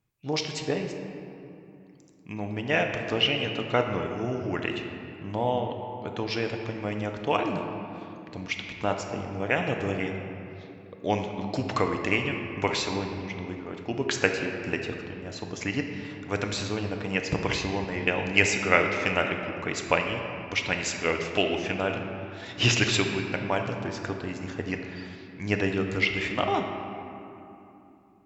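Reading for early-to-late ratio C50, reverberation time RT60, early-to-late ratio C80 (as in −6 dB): 4.5 dB, 2.9 s, 5.5 dB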